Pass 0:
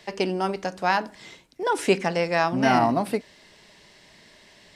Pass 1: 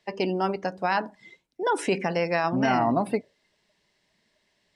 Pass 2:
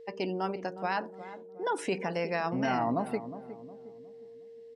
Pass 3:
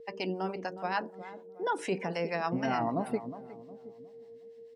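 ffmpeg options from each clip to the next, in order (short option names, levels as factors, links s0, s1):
-af "alimiter=limit=0.211:level=0:latency=1:release=30,afftdn=nr=18:nf=-39"
-filter_complex "[0:a]asplit=2[s0][s1];[s1]adelay=361,lowpass=f=850:p=1,volume=0.266,asplit=2[s2][s3];[s3]adelay=361,lowpass=f=850:p=1,volume=0.45,asplit=2[s4][s5];[s5]adelay=361,lowpass=f=850:p=1,volume=0.45,asplit=2[s6][s7];[s7]adelay=361,lowpass=f=850:p=1,volume=0.45,asplit=2[s8][s9];[s9]adelay=361,lowpass=f=850:p=1,volume=0.45[s10];[s0][s2][s4][s6][s8][s10]amix=inputs=6:normalize=0,aeval=exprs='val(0)+0.01*sin(2*PI*460*n/s)':c=same,volume=0.473"
-filter_complex "[0:a]acrossover=split=630[s0][s1];[s0]aeval=exprs='val(0)*(1-0.7/2+0.7/2*cos(2*PI*6.7*n/s))':c=same[s2];[s1]aeval=exprs='val(0)*(1-0.7/2-0.7/2*cos(2*PI*6.7*n/s))':c=same[s3];[s2][s3]amix=inputs=2:normalize=0,volume=1.33"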